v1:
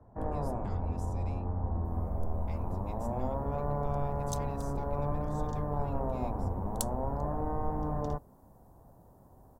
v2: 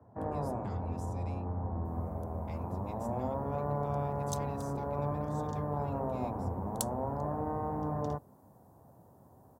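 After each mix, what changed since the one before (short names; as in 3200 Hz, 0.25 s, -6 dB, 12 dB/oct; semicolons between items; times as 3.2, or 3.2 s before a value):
master: add HPF 83 Hz 24 dB/oct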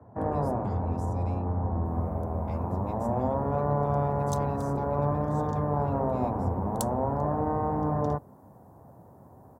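first sound +7.0 dB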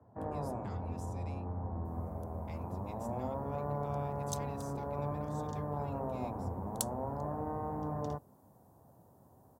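first sound -10.0 dB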